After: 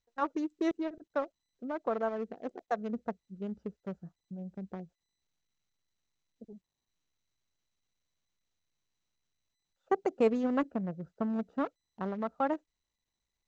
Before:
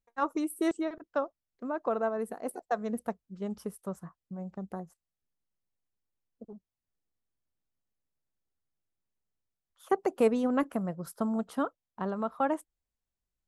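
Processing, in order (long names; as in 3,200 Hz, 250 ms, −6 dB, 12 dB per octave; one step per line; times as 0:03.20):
adaptive Wiener filter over 41 samples
0:10.63–0:11.30: high-shelf EQ 3,200 Hz −8.5 dB
level −1.5 dB
SBC 128 kbit/s 16,000 Hz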